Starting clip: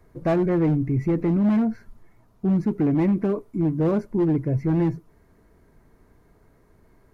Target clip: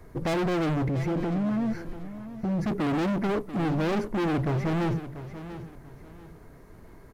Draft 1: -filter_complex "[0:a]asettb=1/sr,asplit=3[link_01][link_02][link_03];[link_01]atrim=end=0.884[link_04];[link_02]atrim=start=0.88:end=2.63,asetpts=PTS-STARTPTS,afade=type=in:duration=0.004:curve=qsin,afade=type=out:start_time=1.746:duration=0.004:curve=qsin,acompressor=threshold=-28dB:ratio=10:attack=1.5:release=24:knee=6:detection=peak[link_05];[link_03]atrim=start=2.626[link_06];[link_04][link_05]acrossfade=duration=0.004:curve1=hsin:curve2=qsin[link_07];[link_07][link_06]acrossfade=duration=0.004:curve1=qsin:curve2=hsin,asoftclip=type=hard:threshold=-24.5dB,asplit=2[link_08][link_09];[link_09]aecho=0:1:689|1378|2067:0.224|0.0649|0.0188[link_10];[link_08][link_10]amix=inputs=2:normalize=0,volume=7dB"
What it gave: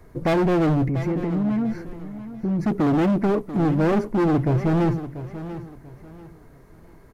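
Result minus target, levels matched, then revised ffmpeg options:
hard clipping: distortion −4 dB
-filter_complex "[0:a]asettb=1/sr,asplit=3[link_01][link_02][link_03];[link_01]atrim=end=0.884[link_04];[link_02]atrim=start=0.88:end=2.63,asetpts=PTS-STARTPTS,afade=type=in:duration=0.004:curve=qsin,afade=type=out:start_time=1.746:duration=0.004:curve=qsin,acompressor=threshold=-28dB:ratio=10:attack=1.5:release=24:knee=6:detection=peak[link_05];[link_03]atrim=start=2.626[link_06];[link_04][link_05]acrossfade=duration=0.004:curve1=hsin:curve2=qsin[link_07];[link_07][link_06]acrossfade=duration=0.004:curve1=qsin:curve2=hsin,asoftclip=type=hard:threshold=-32dB,asplit=2[link_08][link_09];[link_09]aecho=0:1:689|1378|2067:0.224|0.0649|0.0188[link_10];[link_08][link_10]amix=inputs=2:normalize=0,volume=7dB"

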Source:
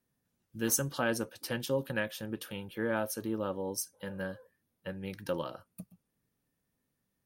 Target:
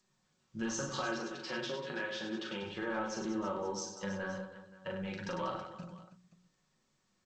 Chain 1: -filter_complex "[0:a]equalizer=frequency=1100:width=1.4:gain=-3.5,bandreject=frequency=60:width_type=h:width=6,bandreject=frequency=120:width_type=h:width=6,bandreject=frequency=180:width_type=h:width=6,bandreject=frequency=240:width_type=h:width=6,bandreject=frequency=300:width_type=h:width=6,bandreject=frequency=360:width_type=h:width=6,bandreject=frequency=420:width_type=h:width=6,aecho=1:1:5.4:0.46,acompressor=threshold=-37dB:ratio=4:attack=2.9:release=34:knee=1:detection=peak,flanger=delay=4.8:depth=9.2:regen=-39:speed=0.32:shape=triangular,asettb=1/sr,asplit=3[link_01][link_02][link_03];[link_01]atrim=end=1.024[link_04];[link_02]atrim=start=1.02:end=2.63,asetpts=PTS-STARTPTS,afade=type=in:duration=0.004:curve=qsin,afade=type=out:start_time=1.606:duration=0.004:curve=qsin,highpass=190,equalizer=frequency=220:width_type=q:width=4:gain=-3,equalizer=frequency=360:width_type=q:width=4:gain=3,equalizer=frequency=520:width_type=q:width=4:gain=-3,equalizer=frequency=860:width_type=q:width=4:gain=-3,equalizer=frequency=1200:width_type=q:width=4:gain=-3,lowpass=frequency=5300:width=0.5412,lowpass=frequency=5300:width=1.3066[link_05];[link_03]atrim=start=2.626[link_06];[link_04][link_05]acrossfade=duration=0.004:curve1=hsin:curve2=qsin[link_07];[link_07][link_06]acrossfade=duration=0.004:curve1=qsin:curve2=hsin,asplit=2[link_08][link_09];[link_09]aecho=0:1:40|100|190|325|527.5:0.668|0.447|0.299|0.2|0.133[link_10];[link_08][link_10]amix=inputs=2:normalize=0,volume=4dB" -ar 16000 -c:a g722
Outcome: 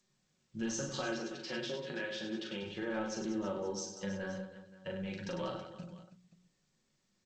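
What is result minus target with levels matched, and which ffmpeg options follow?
1,000 Hz band −4.5 dB
-filter_complex "[0:a]equalizer=frequency=1100:width=1.4:gain=7,bandreject=frequency=60:width_type=h:width=6,bandreject=frequency=120:width_type=h:width=6,bandreject=frequency=180:width_type=h:width=6,bandreject=frequency=240:width_type=h:width=6,bandreject=frequency=300:width_type=h:width=6,bandreject=frequency=360:width_type=h:width=6,bandreject=frequency=420:width_type=h:width=6,aecho=1:1:5.4:0.46,acompressor=threshold=-37dB:ratio=4:attack=2.9:release=34:knee=1:detection=peak,flanger=delay=4.8:depth=9.2:regen=-39:speed=0.32:shape=triangular,asettb=1/sr,asplit=3[link_01][link_02][link_03];[link_01]atrim=end=1.024[link_04];[link_02]atrim=start=1.02:end=2.63,asetpts=PTS-STARTPTS,afade=type=in:duration=0.004:curve=qsin,afade=type=out:start_time=1.606:duration=0.004:curve=qsin,highpass=190,equalizer=frequency=220:width_type=q:width=4:gain=-3,equalizer=frequency=360:width_type=q:width=4:gain=3,equalizer=frequency=520:width_type=q:width=4:gain=-3,equalizer=frequency=860:width_type=q:width=4:gain=-3,equalizer=frequency=1200:width_type=q:width=4:gain=-3,lowpass=frequency=5300:width=0.5412,lowpass=frequency=5300:width=1.3066[link_05];[link_03]atrim=start=2.626[link_06];[link_04][link_05]acrossfade=duration=0.004:curve1=hsin:curve2=qsin[link_07];[link_07][link_06]acrossfade=duration=0.004:curve1=qsin:curve2=hsin,asplit=2[link_08][link_09];[link_09]aecho=0:1:40|100|190|325|527.5:0.668|0.447|0.299|0.2|0.133[link_10];[link_08][link_10]amix=inputs=2:normalize=0,volume=4dB" -ar 16000 -c:a g722

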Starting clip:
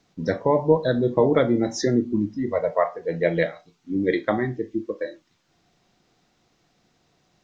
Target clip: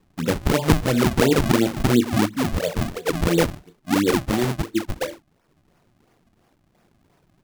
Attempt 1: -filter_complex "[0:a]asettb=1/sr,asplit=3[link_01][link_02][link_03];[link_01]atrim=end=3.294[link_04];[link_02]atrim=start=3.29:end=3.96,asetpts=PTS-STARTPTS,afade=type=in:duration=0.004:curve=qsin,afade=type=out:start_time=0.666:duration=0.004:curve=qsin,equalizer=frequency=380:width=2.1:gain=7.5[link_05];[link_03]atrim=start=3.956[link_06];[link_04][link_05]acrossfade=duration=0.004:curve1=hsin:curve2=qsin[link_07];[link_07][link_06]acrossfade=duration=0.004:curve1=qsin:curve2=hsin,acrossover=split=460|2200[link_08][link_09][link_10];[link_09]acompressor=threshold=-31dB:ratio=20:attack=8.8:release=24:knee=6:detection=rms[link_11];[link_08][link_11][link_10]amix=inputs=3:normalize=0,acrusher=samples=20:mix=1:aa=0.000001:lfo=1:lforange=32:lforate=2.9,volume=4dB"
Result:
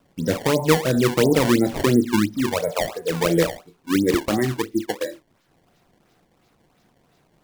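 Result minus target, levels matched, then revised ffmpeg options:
sample-and-hold swept by an LFO: distortion −10 dB
-filter_complex "[0:a]asettb=1/sr,asplit=3[link_01][link_02][link_03];[link_01]atrim=end=3.294[link_04];[link_02]atrim=start=3.29:end=3.96,asetpts=PTS-STARTPTS,afade=type=in:duration=0.004:curve=qsin,afade=type=out:start_time=0.666:duration=0.004:curve=qsin,equalizer=frequency=380:width=2.1:gain=7.5[link_05];[link_03]atrim=start=3.956[link_06];[link_04][link_05]acrossfade=duration=0.004:curve1=hsin:curve2=qsin[link_07];[link_07][link_06]acrossfade=duration=0.004:curve1=qsin:curve2=hsin,acrossover=split=460|2200[link_08][link_09][link_10];[link_09]acompressor=threshold=-31dB:ratio=20:attack=8.8:release=24:knee=6:detection=rms[link_11];[link_08][link_11][link_10]amix=inputs=3:normalize=0,acrusher=samples=55:mix=1:aa=0.000001:lfo=1:lforange=88:lforate=2.9,volume=4dB"

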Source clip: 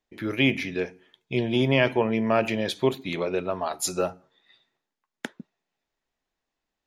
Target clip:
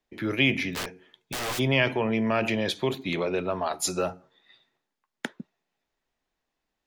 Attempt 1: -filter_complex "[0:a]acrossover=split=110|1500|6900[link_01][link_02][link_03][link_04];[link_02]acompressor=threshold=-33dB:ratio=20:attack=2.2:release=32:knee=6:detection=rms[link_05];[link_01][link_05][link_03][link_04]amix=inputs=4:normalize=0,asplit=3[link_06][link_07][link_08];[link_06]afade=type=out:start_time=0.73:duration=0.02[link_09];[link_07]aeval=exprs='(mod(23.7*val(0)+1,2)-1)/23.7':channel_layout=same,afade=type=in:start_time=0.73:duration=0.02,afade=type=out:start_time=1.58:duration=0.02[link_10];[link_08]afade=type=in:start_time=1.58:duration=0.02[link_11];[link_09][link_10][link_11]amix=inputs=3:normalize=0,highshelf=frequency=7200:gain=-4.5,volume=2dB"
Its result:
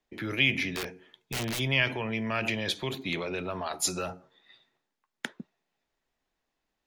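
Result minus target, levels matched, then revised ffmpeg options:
downward compressor: peak gain reduction +9.5 dB
-filter_complex "[0:a]acrossover=split=110|1500|6900[link_01][link_02][link_03][link_04];[link_02]acompressor=threshold=-23dB:ratio=20:attack=2.2:release=32:knee=6:detection=rms[link_05];[link_01][link_05][link_03][link_04]amix=inputs=4:normalize=0,asplit=3[link_06][link_07][link_08];[link_06]afade=type=out:start_time=0.73:duration=0.02[link_09];[link_07]aeval=exprs='(mod(23.7*val(0)+1,2)-1)/23.7':channel_layout=same,afade=type=in:start_time=0.73:duration=0.02,afade=type=out:start_time=1.58:duration=0.02[link_10];[link_08]afade=type=in:start_time=1.58:duration=0.02[link_11];[link_09][link_10][link_11]amix=inputs=3:normalize=0,highshelf=frequency=7200:gain=-4.5,volume=2dB"

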